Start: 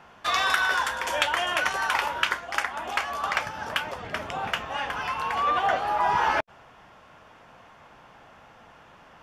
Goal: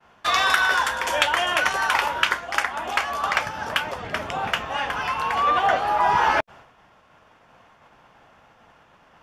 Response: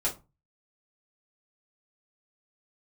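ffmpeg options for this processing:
-af "agate=range=-33dB:threshold=-45dB:ratio=3:detection=peak,volume=4dB"

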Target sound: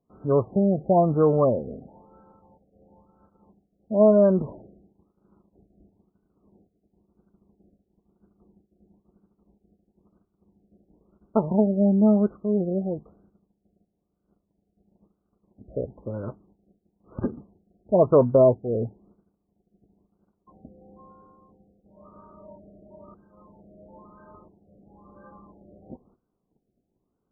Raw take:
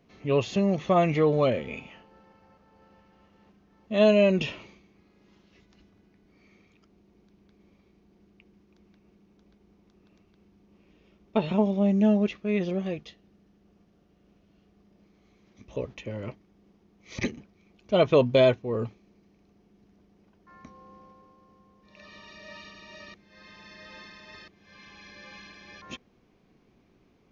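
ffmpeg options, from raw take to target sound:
-af "agate=range=-17dB:threshold=-59dB:ratio=16:detection=peak,afftfilt=real='re*lt(b*sr/1024,750*pow(1600/750,0.5+0.5*sin(2*PI*1*pts/sr)))':imag='im*lt(b*sr/1024,750*pow(1600/750,0.5+0.5*sin(2*PI*1*pts/sr)))':win_size=1024:overlap=0.75,volume=3dB"

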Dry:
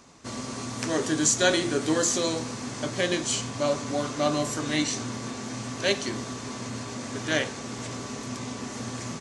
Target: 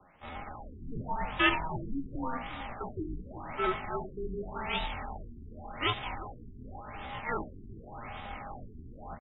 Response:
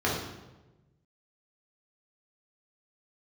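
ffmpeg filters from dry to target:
-filter_complex "[0:a]bandreject=f=60:t=h:w=6,bandreject=f=120:t=h:w=6,bandreject=f=180:t=h:w=6,bandreject=f=240:t=h:w=6,bandreject=f=300:t=h:w=6,bandreject=f=360:t=h:w=6,bandreject=f=420:t=h:w=6,bandreject=f=480:t=h:w=6,adynamicequalizer=threshold=0.00562:dfrequency=1700:dqfactor=1.6:tfrequency=1700:tqfactor=1.6:attack=5:release=100:ratio=0.375:range=3.5:mode=boostabove:tftype=bell,areverse,acompressor=mode=upward:threshold=-42dB:ratio=2.5,areverse,aeval=exprs='val(0)*sin(2*PI*300*n/s)':c=same,afreqshift=-27,asetrate=68011,aresample=44100,atempo=0.64842,asplit=2[a][b];[b]aecho=0:1:359:0.211[c];[a][c]amix=inputs=2:normalize=0,afftfilt=real='re*lt(b*sr/1024,390*pow(3900/390,0.5+0.5*sin(2*PI*0.88*pts/sr)))':imag='im*lt(b*sr/1024,390*pow(3900/390,0.5+0.5*sin(2*PI*0.88*pts/sr)))':win_size=1024:overlap=0.75,volume=-2dB"

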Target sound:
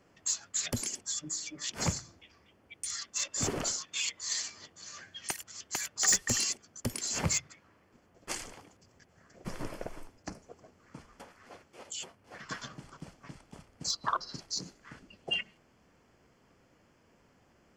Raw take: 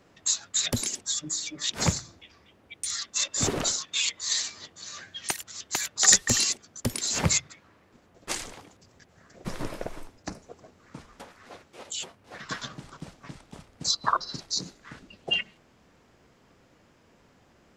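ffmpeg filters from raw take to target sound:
-af "bandreject=f=3.8k:w=5.5,asoftclip=type=tanh:threshold=-12.5dB,volume=-5dB"

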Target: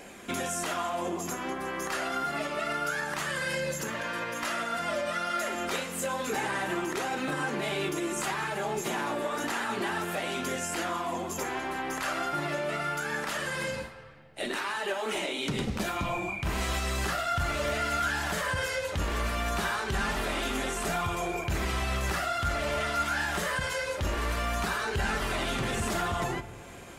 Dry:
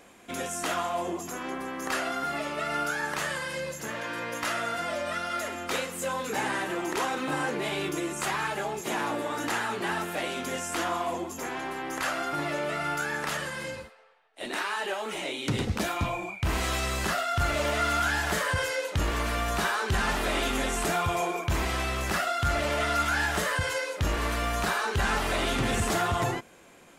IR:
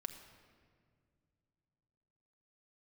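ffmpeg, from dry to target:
-filter_complex "[0:a]alimiter=level_in=5dB:limit=-24dB:level=0:latency=1:release=383,volume=-5dB,flanger=delay=0.4:depth=5.3:regen=-68:speed=0.28:shape=sinusoidal,asplit=2[a][b];[1:a]atrim=start_sample=2205[c];[b][c]afir=irnorm=-1:irlink=0,volume=2.5dB[d];[a][d]amix=inputs=2:normalize=0,volume=5.5dB"

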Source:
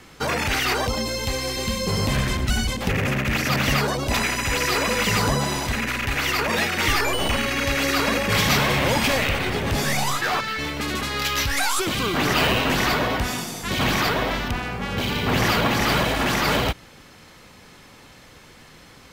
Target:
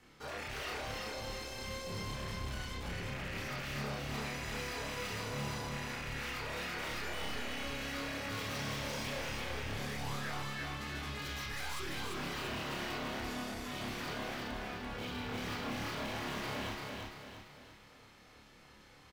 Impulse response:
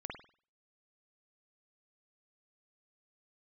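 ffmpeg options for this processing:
-filter_complex "[0:a]asettb=1/sr,asplit=3[a][b][c];[a]atrim=end=8.554[d];[b]atrim=start=8.55:end=9.03,asetpts=PTS-STARTPTS,afade=t=in:d=0.004:c=qsin,afade=t=out:st=0.476:d=0.004:c=qsin,equalizer=f=5.8k:t=o:w=0.75:g=10.5[e];[c]atrim=start=9.026[f];[d][e]acrossfade=d=0.004:c1=hsin:c2=qsin[g];[g][f]acrossfade=d=0.004:c1=qsin:c2=hsin,asoftclip=type=tanh:threshold=-25.5dB,aecho=1:1:340|680|1020|1360|1700|2040:0.708|0.311|0.137|0.0603|0.0265|0.0117[h];[1:a]atrim=start_sample=2205,asetrate=74970,aresample=44100[i];[h][i]afir=irnorm=-1:irlink=0,volume=-8dB"

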